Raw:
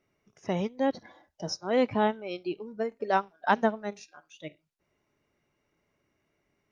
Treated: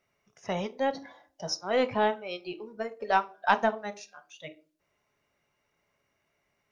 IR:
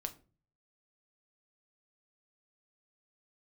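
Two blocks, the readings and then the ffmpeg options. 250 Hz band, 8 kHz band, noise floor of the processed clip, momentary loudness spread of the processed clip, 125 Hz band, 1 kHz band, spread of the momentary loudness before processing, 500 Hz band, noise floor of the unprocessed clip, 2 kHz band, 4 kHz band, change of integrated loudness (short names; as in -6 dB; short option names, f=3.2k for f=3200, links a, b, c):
-5.0 dB, n/a, -77 dBFS, 20 LU, -4.5 dB, +1.5 dB, 19 LU, -0.5 dB, -77 dBFS, +2.5 dB, +2.5 dB, 0.0 dB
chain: -filter_complex "[0:a]aeval=exprs='0.335*(cos(1*acos(clip(val(0)/0.335,-1,1)))-cos(1*PI/2))+0.0376*(cos(2*acos(clip(val(0)/0.335,-1,1)))-cos(2*PI/2))':c=same,asplit=2[a][b];[b]highpass=f=310:w=0.5412,highpass=f=310:w=1.3066[c];[1:a]atrim=start_sample=2205[d];[c][d]afir=irnorm=-1:irlink=0,volume=3dB[e];[a][e]amix=inputs=2:normalize=0,volume=-4dB"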